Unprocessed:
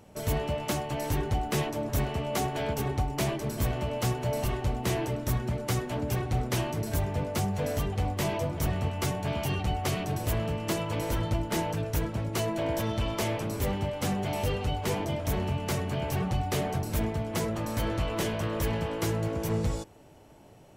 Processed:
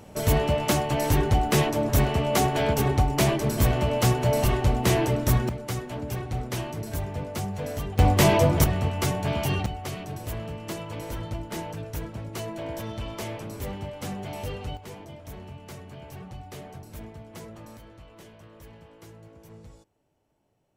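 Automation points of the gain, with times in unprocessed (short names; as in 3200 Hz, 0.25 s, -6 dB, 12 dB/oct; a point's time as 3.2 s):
+7 dB
from 5.49 s -2 dB
from 7.99 s +11 dB
from 8.64 s +4 dB
from 9.66 s -4.5 dB
from 14.77 s -12 dB
from 17.77 s -19 dB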